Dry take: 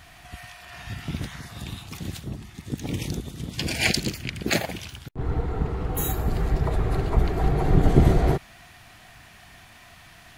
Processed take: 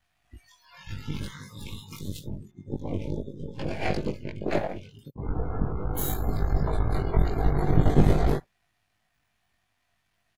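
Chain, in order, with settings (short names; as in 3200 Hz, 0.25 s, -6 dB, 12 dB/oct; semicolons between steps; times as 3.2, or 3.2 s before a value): half-wave gain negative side -12 dB; doubler 20 ms -2 dB; spectral noise reduction 23 dB; 2.51–4.99 EQ curve 260 Hz 0 dB, 550 Hz +7 dB, 14000 Hz -28 dB; gain -1.5 dB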